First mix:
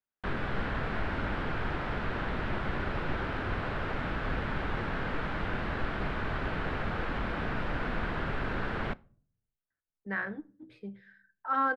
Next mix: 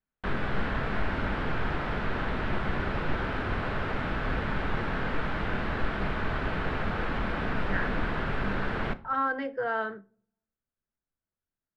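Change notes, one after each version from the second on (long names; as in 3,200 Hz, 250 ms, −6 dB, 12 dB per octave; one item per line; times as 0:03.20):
speech: entry −2.40 s
background: send +11.0 dB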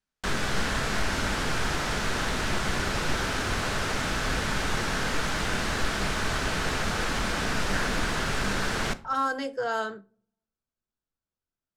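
speech: add parametric band 1,900 Hz −7.5 dB 0.59 octaves
master: remove high-frequency loss of the air 480 metres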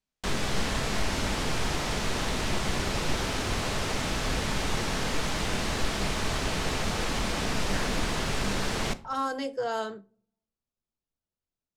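master: add parametric band 1,500 Hz −7.5 dB 0.57 octaves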